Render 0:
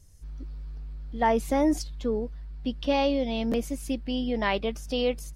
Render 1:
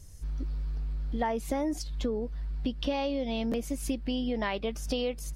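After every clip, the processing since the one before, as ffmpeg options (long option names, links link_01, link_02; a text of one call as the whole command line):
ffmpeg -i in.wav -af "acompressor=threshold=-34dB:ratio=6,volume=6dB" out.wav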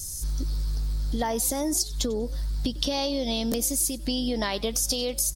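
ffmpeg -i in.wav -filter_complex "[0:a]aexciter=amount=4.4:drive=8.5:freq=3800,acompressor=threshold=-29dB:ratio=6,asplit=3[link_01][link_02][link_03];[link_02]adelay=96,afreqshift=54,volume=-21.5dB[link_04];[link_03]adelay=192,afreqshift=108,volume=-31.4dB[link_05];[link_01][link_04][link_05]amix=inputs=3:normalize=0,volume=6dB" out.wav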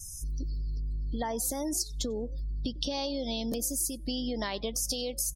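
ffmpeg -i in.wav -af "afftdn=noise_reduction=32:noise_floor=-40,volume=-5.5dB" out.wav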